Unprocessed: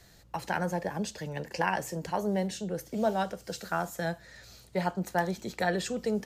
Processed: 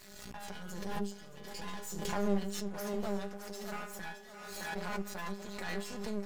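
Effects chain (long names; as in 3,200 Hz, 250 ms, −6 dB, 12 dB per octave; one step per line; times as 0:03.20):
stiff-string resonator 200 Hz, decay 0.39 s, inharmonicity 0.002
half-wave rectification
gain on a spectral selection 0:00.51–0:02.09, 550–2,800 Hz −7 dB
feedback echo with a high-pass in the loop 616 ms, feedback 59%, high-pass 290 Hz, level −11 dB
background raised ahead of every attack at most 33 dB per second
level +7.5 dB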